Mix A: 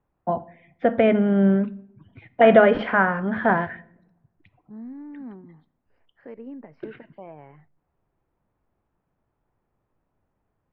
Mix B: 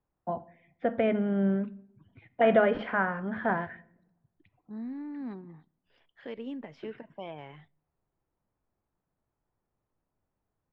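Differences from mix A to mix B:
first voice -8.5 dB; second voice: remove running mean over 13 samples

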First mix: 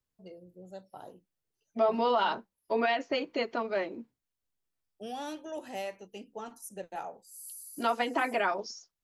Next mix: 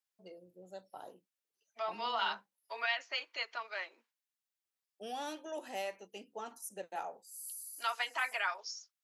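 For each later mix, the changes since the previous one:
second voice: add HPF 1300 Hz 12 dB/oct; master: add HPF 500 Hz 6 dB/oct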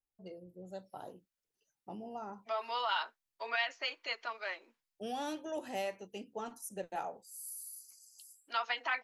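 second voice: entry +0.70 s; master: remove HPF 500 Hz 6 dB/oct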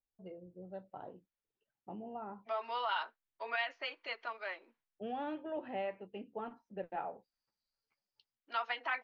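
first voice: add LPF 3000 Hz 24 dB/oct; master: add air absorption 240 m

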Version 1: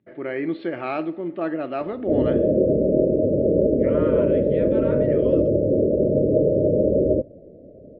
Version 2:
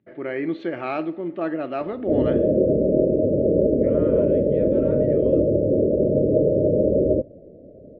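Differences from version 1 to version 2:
second voice -8.5 dB; master: remove brick-wall FIR low-pass 5500 Hz

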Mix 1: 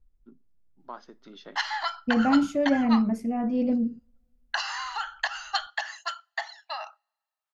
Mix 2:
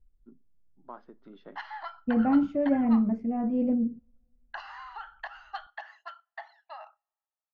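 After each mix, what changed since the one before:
background -4.0 dB; master: add tape spacing loss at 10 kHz 43 dB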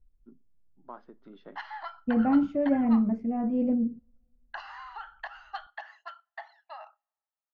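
none

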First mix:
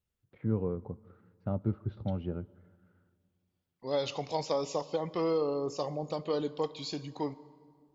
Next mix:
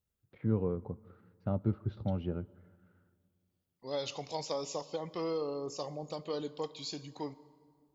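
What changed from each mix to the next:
second voice -5.5 dB; master: add high shelf 5200 Hz +11 dB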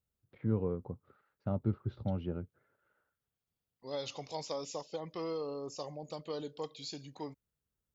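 reverb: off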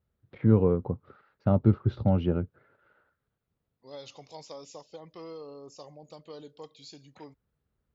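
first voice +11.0 dB; second voice -5.0 dB

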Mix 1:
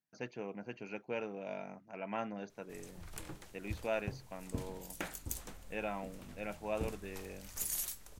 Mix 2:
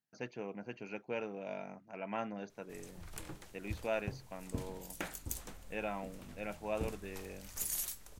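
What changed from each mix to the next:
none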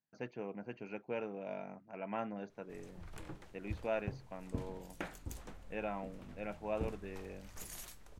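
master: add LPF 2100 Hz 6 dB/oct

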